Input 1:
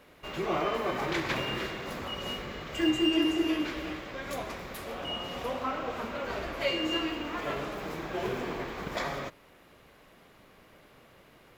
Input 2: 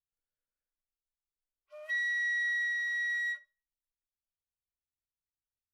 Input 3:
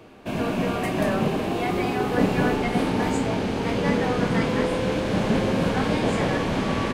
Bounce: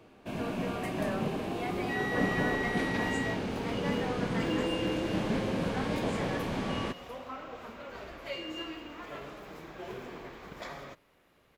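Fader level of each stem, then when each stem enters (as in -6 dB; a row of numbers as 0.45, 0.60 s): -9.0, -5.0, -9.0 dB; 1.65, 0.00, 0.00 s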